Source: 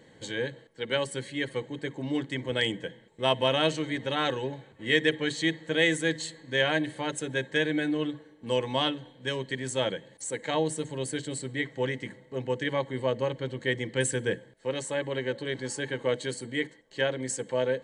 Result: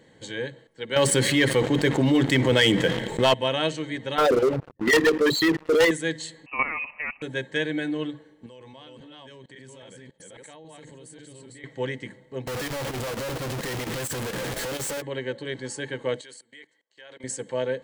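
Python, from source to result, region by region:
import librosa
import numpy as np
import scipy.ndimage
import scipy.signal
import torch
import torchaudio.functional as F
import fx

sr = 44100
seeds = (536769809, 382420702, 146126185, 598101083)

y = fx.chain(x, sr, fx.leveller(passes=2),
    fx.env_flatten(amount_pct=70), at=(0.96, 3.34))
y = fx.chain(y, sr, fx.envelope_sharpen(power=3.0),
    fx.level_steps(step_db=11),
    fx.leveller(passes=5), at=(4.18, 5.91))
y = fx.chain(y, sr, fx.curve_eq(hz=(280.0, 830.0, 1300.0), db=(0, 6, 3)),
    fx.level_steps(step_db=10),
    fx.freq_invert(carrier_hz=2800), at=(6.46, 7.22))
y = fx.chain(y, sr, fx.reverse_delay(ms=273, wet_db=-2.0),
    fx.level_steps(step_db=23), at=(8.46, 11.64))
y = fx.chain(y, sr, fx.clip_1bit(),
    fx.chopper(hz=4.3, depth_pct=60, duty_pct=90), at=(12.47, 15.02))
y = fx.chain(y, sr, fx.highpass(hz=1100.0, slope=6),
    fx.level_steps(step_db=23), at=(16.21, 17.24))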